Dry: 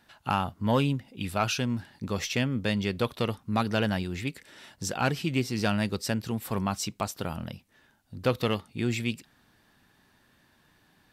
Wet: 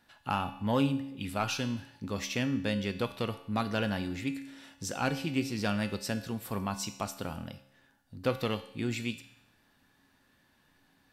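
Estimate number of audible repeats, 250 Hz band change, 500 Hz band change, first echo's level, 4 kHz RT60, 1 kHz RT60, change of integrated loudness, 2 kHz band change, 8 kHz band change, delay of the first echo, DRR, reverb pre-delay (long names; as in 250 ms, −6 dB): no echo audible, −3.0 dB, −4.0 dB, no echo audible, 0.80 s, 0.80 s, −4.0 dB, −4.0 dB, −4.0 dB, no echo audible, 8.5 dB, 3 ms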